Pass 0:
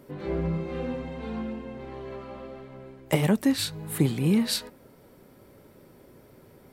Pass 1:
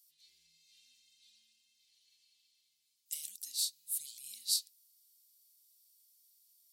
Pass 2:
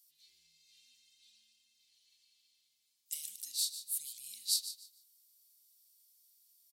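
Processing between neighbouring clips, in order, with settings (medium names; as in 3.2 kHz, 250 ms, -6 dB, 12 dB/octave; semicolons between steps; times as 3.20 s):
inverse Chebyshev high-pass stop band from 1.4 kHz, stop band 60 dB
feedback delay 148 ms, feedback 23%, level -12 dB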